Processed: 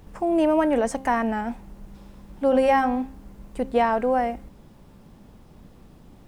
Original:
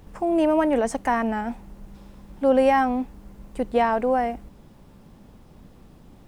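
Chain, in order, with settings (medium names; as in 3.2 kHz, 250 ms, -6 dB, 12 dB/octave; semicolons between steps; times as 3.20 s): de-hum 265.8 Hz, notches 15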